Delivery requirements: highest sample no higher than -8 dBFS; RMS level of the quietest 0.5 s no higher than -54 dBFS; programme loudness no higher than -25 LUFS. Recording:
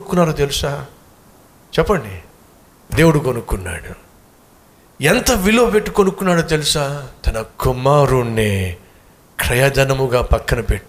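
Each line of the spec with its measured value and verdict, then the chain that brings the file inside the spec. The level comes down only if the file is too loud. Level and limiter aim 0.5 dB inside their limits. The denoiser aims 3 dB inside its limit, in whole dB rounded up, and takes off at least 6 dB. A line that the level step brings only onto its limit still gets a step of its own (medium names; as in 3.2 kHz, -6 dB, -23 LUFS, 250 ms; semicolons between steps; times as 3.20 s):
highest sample -2.0 dBFS: fail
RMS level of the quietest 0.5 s -48 dBFS: fail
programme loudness -16.5 LUFS: fail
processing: trim -9 dB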